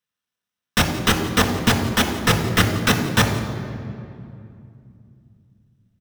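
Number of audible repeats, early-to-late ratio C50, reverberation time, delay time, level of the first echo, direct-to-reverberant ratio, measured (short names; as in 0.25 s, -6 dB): 1, 7.0 dB, 2.5 s, 0.172 s, -18.0 dB, 2.5 dB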